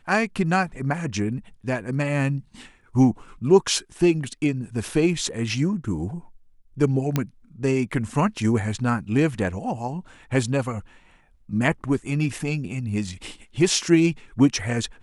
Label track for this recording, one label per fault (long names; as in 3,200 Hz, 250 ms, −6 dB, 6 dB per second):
7.160000	7.160000	click −8 dBFS